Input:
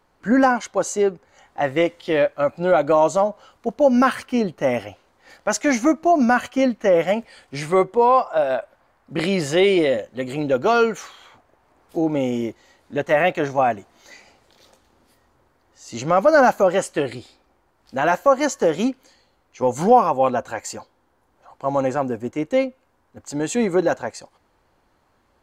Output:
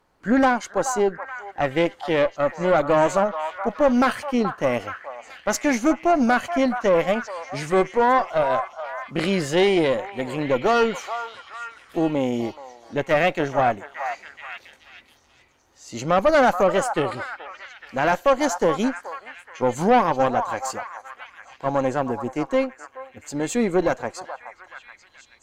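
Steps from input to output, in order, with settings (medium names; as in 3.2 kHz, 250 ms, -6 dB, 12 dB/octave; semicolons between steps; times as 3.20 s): valve stage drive 12 dB, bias 0.65; on a send: repeats whose band climbs or falls 427 ms, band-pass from 1 kHz, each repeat 0.7 oct, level -6 dB; on the sum: trim +1.5 dB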